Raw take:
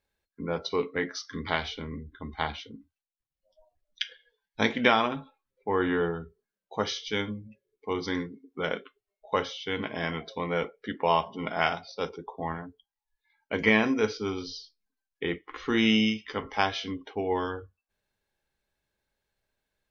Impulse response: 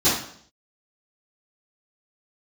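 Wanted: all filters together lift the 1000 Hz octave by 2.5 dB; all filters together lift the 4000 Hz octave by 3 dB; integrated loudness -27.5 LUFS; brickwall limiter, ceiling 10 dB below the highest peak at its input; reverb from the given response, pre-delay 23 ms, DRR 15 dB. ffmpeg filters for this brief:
-filter_complex "[0:a]equalizer=f=1k:t=o:g=3,equalizer=f=4k:t=o:g=4,alimiter=limit=-15dB:level=0:latency=1,asplit=2[a][b];[1:a]atrim=start_sample=2205,adelay=23[c];[b][c]afir=irnorm=-1:irlink=0,volume=-32.5dB[d];[a][d]amix=inputs=2:normalize=0,volume=3dB"

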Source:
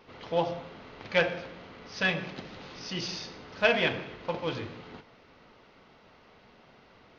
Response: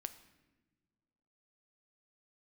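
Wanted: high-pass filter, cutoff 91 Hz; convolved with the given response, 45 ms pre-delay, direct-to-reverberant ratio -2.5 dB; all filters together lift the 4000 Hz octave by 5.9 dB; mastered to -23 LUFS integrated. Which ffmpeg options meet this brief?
-filter_complex "[0:a]highpass=91,equalizer=f=4k:t=o:g=8,asplit=2[a][b];[1:a]atrim=start_sample=2205,adelay=45[c];[b][c]afir=irnorm=-1:irlink=0,volume=5.5dB[d];[a][d]amix=inputs=2:normalize=0,volume=1.5dB"

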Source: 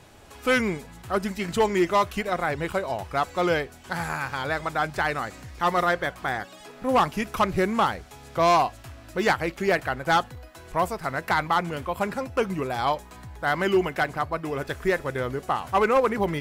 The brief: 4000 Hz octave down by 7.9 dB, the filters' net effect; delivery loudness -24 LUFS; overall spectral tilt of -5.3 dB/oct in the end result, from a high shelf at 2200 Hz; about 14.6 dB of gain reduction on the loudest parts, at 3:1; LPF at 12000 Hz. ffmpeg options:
-af "lowpass=12k,highshelf=f=2.2k:g=-7.5,equalizer=f=4k:t=o:g=-3.5,acompressor=threshold=-38dB:ratio=3,volume=15dB"

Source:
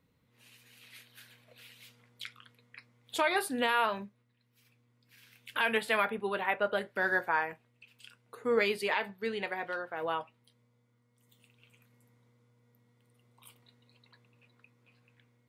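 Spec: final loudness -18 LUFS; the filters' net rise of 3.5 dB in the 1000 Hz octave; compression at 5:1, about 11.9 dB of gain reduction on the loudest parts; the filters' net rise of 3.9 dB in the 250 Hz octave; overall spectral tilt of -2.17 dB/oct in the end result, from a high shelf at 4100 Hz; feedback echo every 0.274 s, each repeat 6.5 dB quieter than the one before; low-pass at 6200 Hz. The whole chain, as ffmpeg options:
-af "lowpass=6.2k,equalizer=f=250:t=o:g=4.5,equalizer=f=1k:t=o:g=4.5,highshelf=f=4.1k:g=-6.5,acompressor=threshold=-35dB:ratio=5,aecho=1:1:274|548|822|1096|1370|1644:0.473|0.222|0.105|0.0491|0.0231|0.0109,volume=21.5dB"

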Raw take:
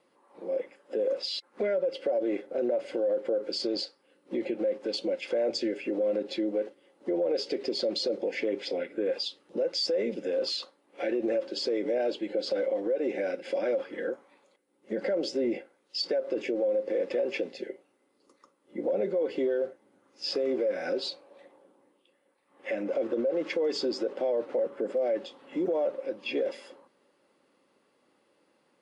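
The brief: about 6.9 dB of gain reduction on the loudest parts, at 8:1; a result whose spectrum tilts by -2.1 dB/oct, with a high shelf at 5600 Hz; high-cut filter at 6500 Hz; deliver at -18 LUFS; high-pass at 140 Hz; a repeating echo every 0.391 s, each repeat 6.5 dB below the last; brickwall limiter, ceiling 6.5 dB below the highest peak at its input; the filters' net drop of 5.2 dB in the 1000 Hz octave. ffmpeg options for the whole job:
-af "highpass=140,lowpass=6.5k,equalizer=f=1k:t=o:g=-8.5,highshelf=f=5.6k:g=-7.5,acompressor=threshold=-33dB:ratio=8,alimiter=level_in=6dB:limit=-24dB:level=0:latency=1,volume=-6dB,aecho=1:1:391|782|1173|1564|1955|2346:0.473|0.222|0.105|0.0491|0.0231|0.0109,volume=20.5dB"

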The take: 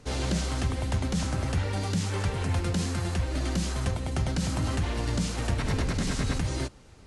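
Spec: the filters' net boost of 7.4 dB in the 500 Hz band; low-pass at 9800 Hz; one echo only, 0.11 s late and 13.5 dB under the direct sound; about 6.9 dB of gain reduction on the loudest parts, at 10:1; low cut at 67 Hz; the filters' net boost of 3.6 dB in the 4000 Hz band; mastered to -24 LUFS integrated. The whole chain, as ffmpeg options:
-af "highpass=67,lowpass=9.8k,equalizer=f=500:t=o:g=9,equalizer=f=4k:t=o:g=4.5,acompressor=threshold=-29dB:ratio=10,aecho=1:1:110:0.211,volume=9.5dB"

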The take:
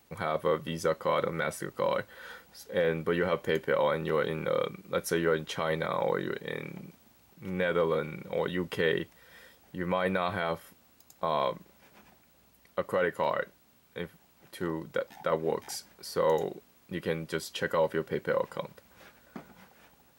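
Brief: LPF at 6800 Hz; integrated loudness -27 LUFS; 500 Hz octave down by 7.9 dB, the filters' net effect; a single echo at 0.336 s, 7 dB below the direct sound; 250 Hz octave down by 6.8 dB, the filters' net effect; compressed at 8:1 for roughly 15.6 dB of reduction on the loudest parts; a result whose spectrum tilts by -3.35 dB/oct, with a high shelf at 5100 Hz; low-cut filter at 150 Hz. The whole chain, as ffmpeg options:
-af "highpass=150,lowpass=6.8k,equalizer=f=250:t=o:g=-6.5,equalizer=f=500:t=o:g=-7.5,highshelf=f=5.1k:g=7,acompressor=threshold=-44dB:ratio=8,aecho=1:1:336:0.447,volume=21.5dB"

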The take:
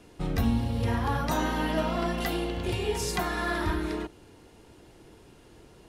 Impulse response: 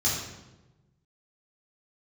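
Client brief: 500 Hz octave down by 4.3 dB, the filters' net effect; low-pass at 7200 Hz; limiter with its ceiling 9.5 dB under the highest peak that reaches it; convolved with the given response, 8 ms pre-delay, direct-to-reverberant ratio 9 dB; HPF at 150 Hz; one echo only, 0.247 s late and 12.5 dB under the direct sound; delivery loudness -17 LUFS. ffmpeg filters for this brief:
-filter_complex "[0:a]highpass=150,lowpass=7.2k,equalizer=f=500:t=o:g=-6,alimiter=level_in=2.5dB:limit=-24dB:level=0:latency=1,volume=-2.5dB,aecho=1:1:247:0.237,asplit=2[a][b];[1:a]atrim=start_sample=2205,adelay=8[c];[b][c]afir=irnorm=-1:irlink=0,volume=-19dB[d];[a][d]amix=inputs=2:normalize=0,volume=17dB"

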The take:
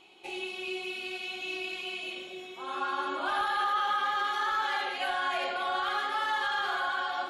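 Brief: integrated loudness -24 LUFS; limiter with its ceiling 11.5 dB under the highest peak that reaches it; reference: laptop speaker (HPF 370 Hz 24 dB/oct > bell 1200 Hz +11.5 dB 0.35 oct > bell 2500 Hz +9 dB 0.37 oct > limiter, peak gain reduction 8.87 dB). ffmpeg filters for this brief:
-af "alimiter=level_in=7.5dB:limit=-24dB:level=0:latency=1,volume=-7.5dB,highpass=f=370:w=0.5412,highpass=f=370:w=1.3066,equalizer=f=1.2k:t=o:w=0.35:g=11.5,equalizer=f=2.5k:t=o:w=0.37:g=9,volume=12dB,alimiter=limit=-18dB:level=0:latency=1"

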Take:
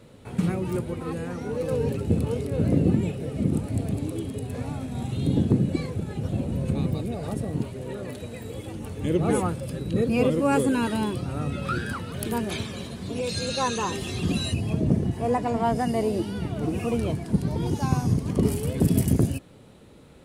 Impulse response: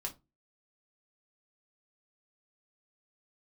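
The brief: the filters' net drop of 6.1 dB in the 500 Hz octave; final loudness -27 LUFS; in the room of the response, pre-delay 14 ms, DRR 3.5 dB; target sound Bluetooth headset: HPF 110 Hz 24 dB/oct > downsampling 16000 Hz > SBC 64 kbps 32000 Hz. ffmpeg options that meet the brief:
-filter_complex "[0:a]equalizer=f=500:t=o:g=-7.5,asplit=2[a][b];[1:a]atrim=start_sample=2205,adelay=14[c];[b][c]afir=irnorm=-1:irlink=0,volume=-3dB[d];[a][d]amix=inputs=2:normalize=0,highpass=f=110:w=0.5412,highpass=f=110:w=1.3066,aresample=16000,aresample=44100" -ar 32000 -c:a sbc -b:a 64k

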